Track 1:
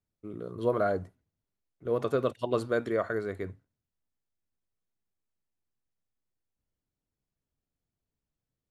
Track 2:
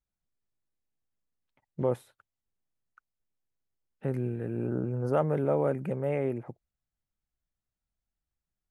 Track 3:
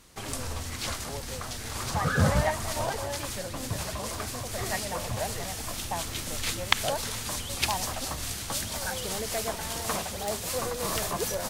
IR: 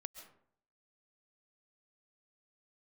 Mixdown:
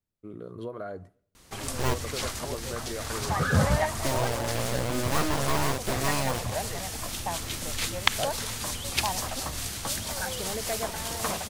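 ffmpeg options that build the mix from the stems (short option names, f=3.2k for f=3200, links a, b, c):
-filter_complex "[0:a]acompressor=threshold=-33dB:ratio=6,volume=-1.5dB,asplit=2[a][b];[b]volume=-18dB[c];[1:a]aeval=exprs='abs(val(0))':c=same,acrusher=bits=4:mix=0:aa=0.000001,volume=0.5dB[d];[2:a]adelay=1350,volume=0.5dB[e];[3:a]atrim=start_sample=2205[f];[c][f]afir=irnorm=-1:irlink=0[g];[a][d][e][g]amix=inputs=4:normalize=0"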